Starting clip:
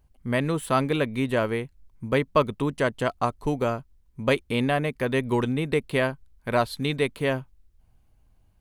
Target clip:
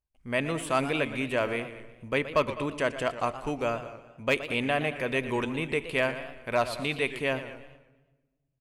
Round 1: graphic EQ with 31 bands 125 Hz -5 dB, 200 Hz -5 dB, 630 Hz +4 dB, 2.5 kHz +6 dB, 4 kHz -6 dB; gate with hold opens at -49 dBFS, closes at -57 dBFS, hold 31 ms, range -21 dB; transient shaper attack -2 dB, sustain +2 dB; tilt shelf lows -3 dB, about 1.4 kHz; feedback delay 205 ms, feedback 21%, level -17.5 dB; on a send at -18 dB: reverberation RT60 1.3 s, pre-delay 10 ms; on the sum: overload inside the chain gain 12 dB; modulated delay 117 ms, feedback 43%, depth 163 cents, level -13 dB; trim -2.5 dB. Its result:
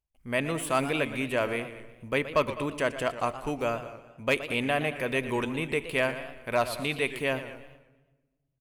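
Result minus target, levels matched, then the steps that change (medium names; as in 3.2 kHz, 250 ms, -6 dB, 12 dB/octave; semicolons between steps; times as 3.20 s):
8 kHz band +3.0 dB
add after transient shaper: low-pass 8.9 kHz 12 dB/octave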